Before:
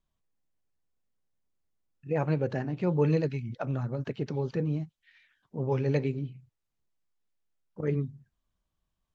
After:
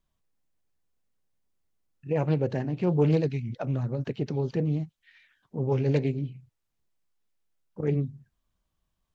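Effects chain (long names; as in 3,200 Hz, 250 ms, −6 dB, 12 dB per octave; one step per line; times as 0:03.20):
dynamic equaliser 1,300 Hz, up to −7 dB, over −49 dBFS, Q 1.1
highs frequency-modulated by the lows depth 0.22 ms
level +3 dB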